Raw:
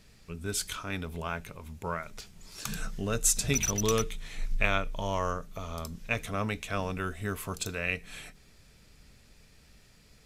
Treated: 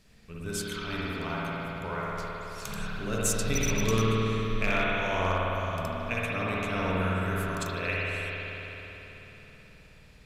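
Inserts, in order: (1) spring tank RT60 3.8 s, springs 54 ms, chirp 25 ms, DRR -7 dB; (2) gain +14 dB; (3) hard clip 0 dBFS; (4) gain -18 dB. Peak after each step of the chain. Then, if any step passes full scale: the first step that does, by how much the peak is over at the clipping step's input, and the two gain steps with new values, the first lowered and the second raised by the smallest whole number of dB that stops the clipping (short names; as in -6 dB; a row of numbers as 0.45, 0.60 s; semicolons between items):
-9.5, +4.5, 0.0, -18.0 dBFS; step 2, 4.5 dB; step 2 +9 dB, step 4 -13 dB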